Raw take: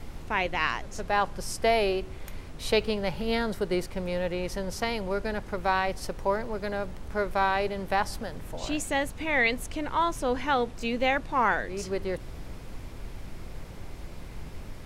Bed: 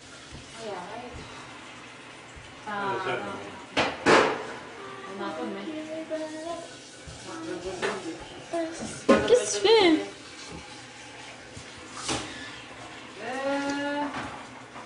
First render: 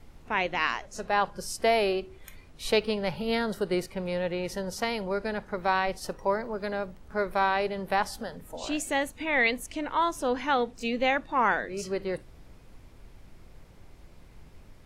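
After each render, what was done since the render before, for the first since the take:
noise reduction from a noise print 11 dB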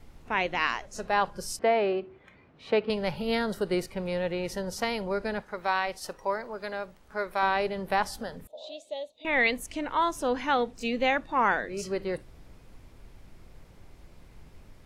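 0:01.59–0:02.90: band-pass filter 130–2,100 Hz
0:05.41–0:07.43: low-shelf EQ 380 Hz −10.5 dB
0:08.47–0:09.25: pair of resonant band-passes 1,500 Hz, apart 2.6 octaves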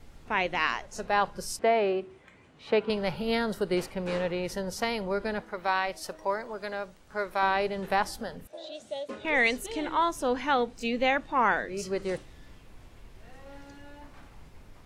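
mix in bed −21 dB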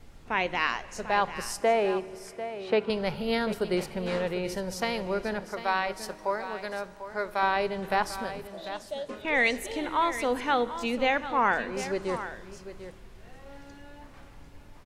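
single-tap delay 745 ms −12 dB
four-comb reverb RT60 3.2 s, combs from 33 ms, DRR 17.5 dB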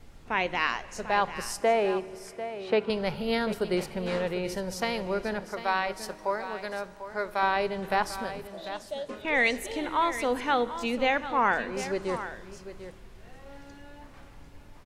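no processing that can be heard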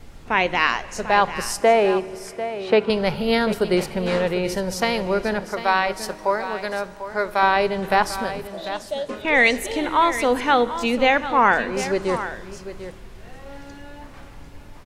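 level +8 dB

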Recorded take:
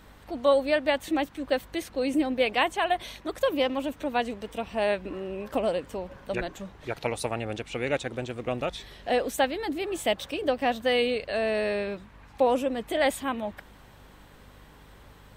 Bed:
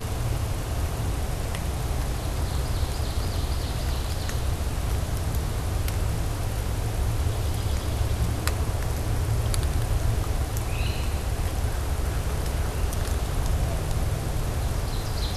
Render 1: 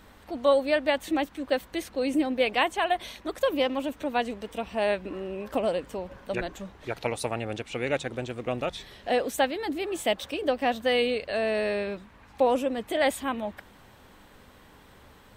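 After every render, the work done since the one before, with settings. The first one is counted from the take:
hum removal 50 Hz, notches 3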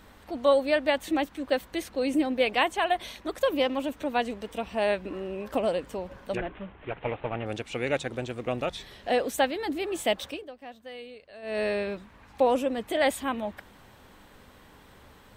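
0:06.37–0:07.46: variable-slope delta modulation 16 kbit/s
0:10.26–0:11.62: duck −18 dB, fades 0.20 s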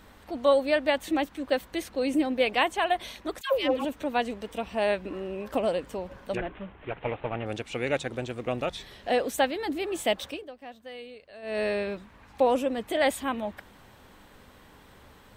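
0:03.41–0:03.85: all-pass dispersion lows, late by 139 ms, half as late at 640 Hz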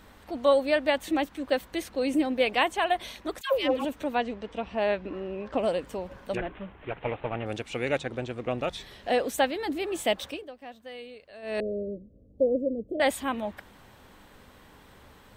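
0:04.15–0:05.59: high-frequency loss of the air 130 metres
0:07.98–0:08.64: high-shelf EQ 7,400 Hz −12 dB
0:11.60–0:13.00: elliptic low-pass filter 560 Hz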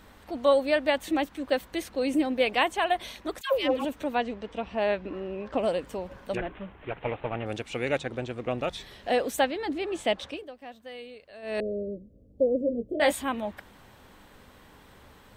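0:09.44–0:10.37: high-frequency loss of the air 62 metres
0:12.59–0:13.22: double-tracking delay 17 ms −5 dB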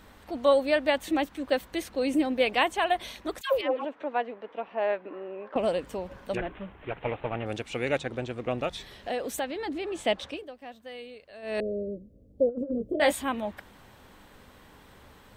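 0:03.61–0:05.56: band-pass filter 400–2,000 Hz
0:08.67–0:09.99: downward compressor 2.5 to 1, threshold −30 dBFS
0:12.49–0:12.96: compressor whose output falls as the input rises −30 dBFS, ratio −0.5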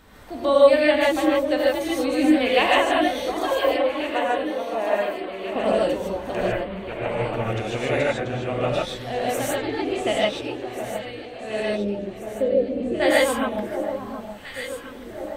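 delay that swaps between a low-pass and a high-pass 718 ms, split 1,200 Hz, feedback 72%, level −8 dB
reverb whose tail is shaped and stops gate 180 ms rising, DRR −5.5 dB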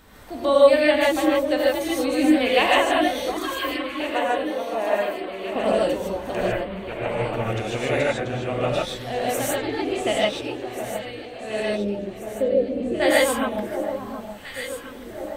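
0:03.37–0:04.00: gain on a spectral selection 390–1,000 Hz −12 dB
high-shelf EQ 6,900 Hz +5 dB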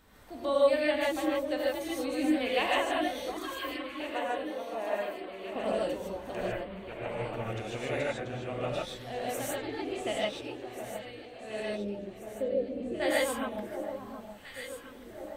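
level −10 dB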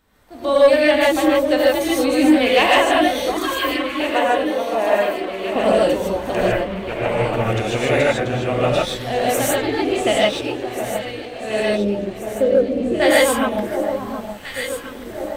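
automatic gain control gain up to 12 dB
leveller curve on the samples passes 1

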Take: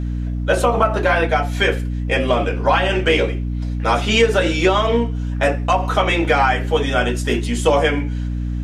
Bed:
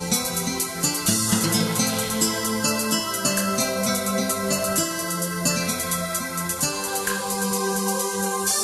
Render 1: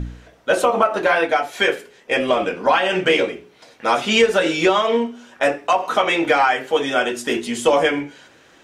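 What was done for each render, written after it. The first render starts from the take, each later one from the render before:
hum removal 60 Hz, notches 7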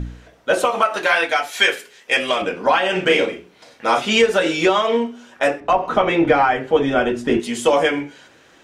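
0:00.65–0:02.42: tilt shelving filter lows −7 dB, about 1,100 Hz
0:02.92–0:03.99: double-tracking delay 39 ms −7.5 dB
0:05.60–0:07.40: RIAA equalisation playback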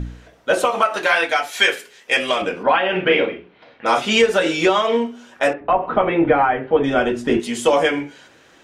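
0:02.63–0:03.86: low-pass filter 3,300 Hz 24 dB per octave
0:05.53–0:06.84: Gaussian smoothing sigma 2.9 samples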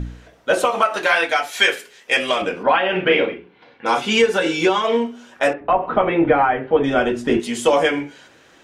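0:03.34–0:04.84: notch comb filter 630 Hz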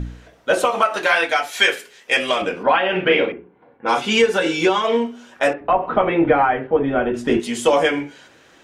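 0:03.32–0:04.04: low-pass that shuts in the quiet parts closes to 870 Hz, open at −15 dBFS
0:06.67–0:07.14: high-frequency loss of the air 500 metres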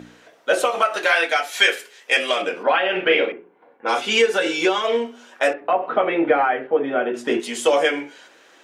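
high-pass filter 350 Hz 12 dB per octave
dynamic equaliser 970 Hz, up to −6 dB, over −33 dBFS, Q 3.1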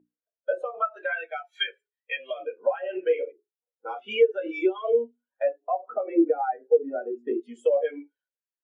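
downward compressor 3 to 1, threshold −22 dBFS, peak gain reduction 8.5 dB
every bin expanded away from the loudest bin 2.5 to 1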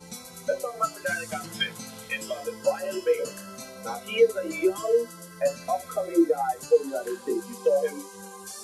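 mix in bed −18 dB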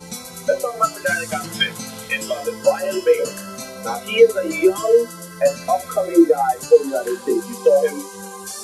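level +8.5 dB
brickwall limiter −1 dBFS, peak gain reduction 1 dB

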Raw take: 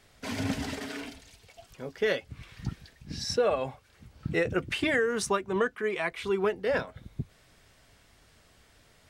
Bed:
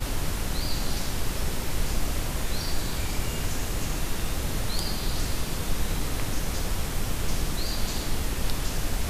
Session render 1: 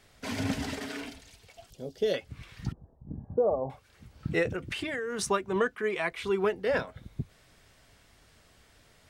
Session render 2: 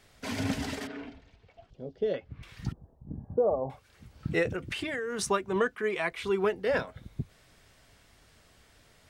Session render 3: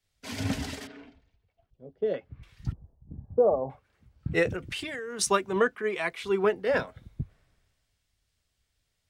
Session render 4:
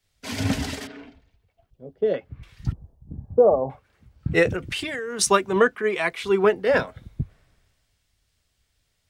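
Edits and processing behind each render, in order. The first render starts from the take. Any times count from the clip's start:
0:01.70–0:02.14: flat-topped bell 1,500 Hz −15.5 dB; 0:02.72–0:03.70: Butterworth low-pass 940 Hz; 0:04.52–0:05.19: downward compressor, threshold −30 dBFS
0:00.87–0:02.43: head-to-tape spacing loss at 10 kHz 33 dB
multiband upward and downward expander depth 70%
level +6 dB

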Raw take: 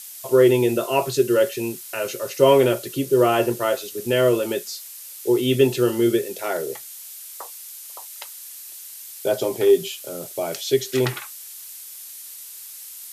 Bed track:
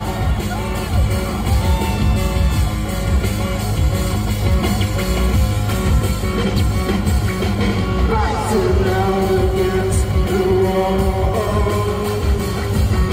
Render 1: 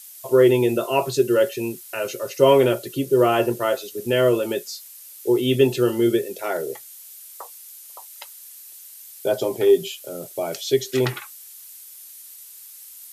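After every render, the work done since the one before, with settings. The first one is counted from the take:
broadband denoise 6 dB, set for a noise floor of −39 dBFS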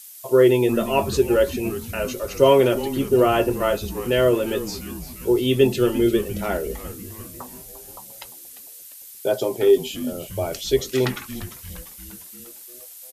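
echo with shifted repeats 348 ms, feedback 59%, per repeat −150 Hz, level −13.5 dB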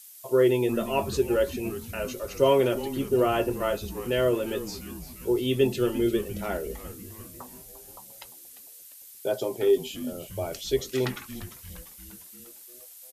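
level −6 dB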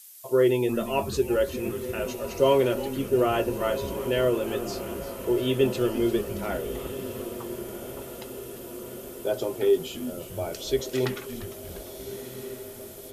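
feedback delay with all-pass diffusion 1,385 ms, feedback 63%, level −12 dB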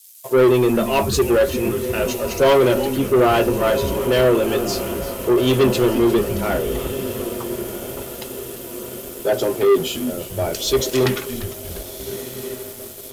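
leveller curve on the samples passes 3
multiband upward and downward expander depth 40%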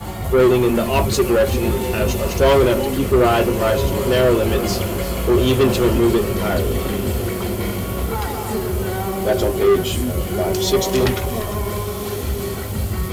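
mix in bed track −7 dB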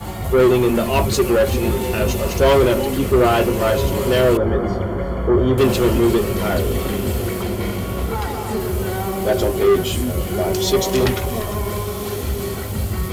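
0:04.37–0:05.58: Savitzky-Golay smoothing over 41 samples
0:07.42–0:08.60: high-shelf EQ 6,900 Hz −5 dB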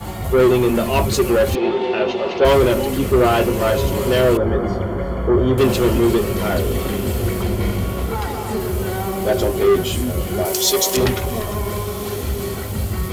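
0:01.55–0:02.45: loudspeaker in its box 290–4,100 Hz, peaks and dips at 370 Hz +6 dB, 790 Hz +7 dB, 3,300 Hz +3 dB
0:07.21–0:07.90: low-shelf EQ 98 Hz +9 dB
0:10.45–0:10.97: bass and treble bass −14 dB, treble +9 dB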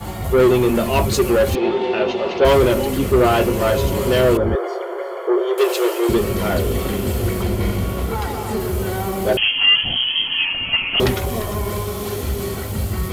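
0:04.55–0:06.09: linear-phase brick-wall high-pass 340 Hz
0:09.37–0:11.00: voice inversion scrambler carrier 3,200 Hz

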